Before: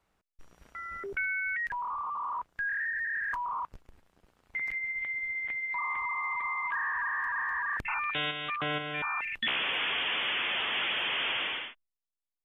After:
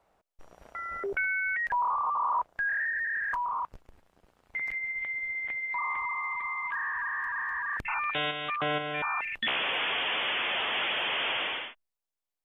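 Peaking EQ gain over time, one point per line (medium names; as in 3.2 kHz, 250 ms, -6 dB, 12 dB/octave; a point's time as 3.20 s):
peaking EQ 660 Hz 1.4 oct
2.82 s +12.5 dB
3.50 s +4 dB
5.90 s +4 dB
6.41 s -3 dB
7.64 s -3 dB
8.07 s +6 dB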